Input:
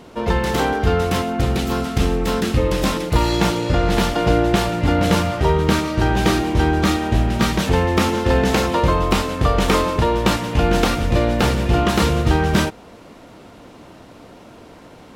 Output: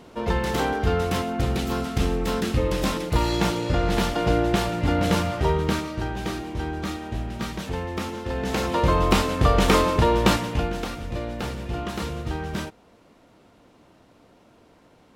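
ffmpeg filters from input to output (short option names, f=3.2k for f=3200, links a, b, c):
-af "volume=6dB,afade=t=out:st=5.47:d=0.66:silence=0.421697,afade=t=in:st=8.36:d=0.71:silence=0.281838,afade=t=out:st=10.31:d=0.43:silence=0.266073"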